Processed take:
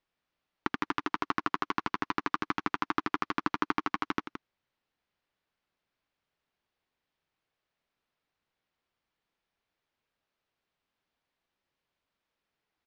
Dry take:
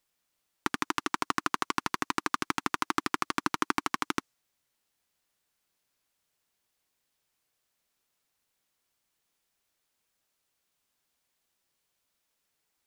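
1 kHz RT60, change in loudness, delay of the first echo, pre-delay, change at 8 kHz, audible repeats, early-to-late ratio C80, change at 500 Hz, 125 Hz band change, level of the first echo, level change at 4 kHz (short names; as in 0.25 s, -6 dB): none, -1.5 dB, 0.17 s, none, under -15 dB, 1, none, -0.5 dB, 0.0 dB, -10.0 dB, -5.5 dB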